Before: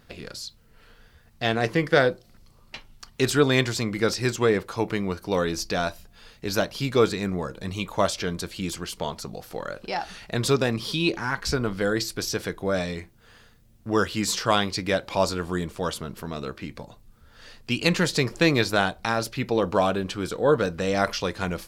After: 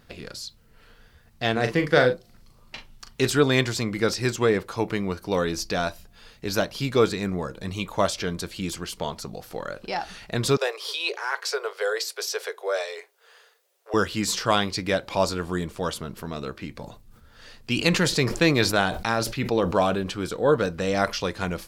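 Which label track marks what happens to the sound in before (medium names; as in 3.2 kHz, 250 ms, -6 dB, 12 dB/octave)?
1.520000	3.270000	doubling 40 ms -8 dB
10.570000	13.940000	steep high-pass 390 Hz 96 dB/octave
16.740000	20.110000	decay stretcher at most 79 dB/s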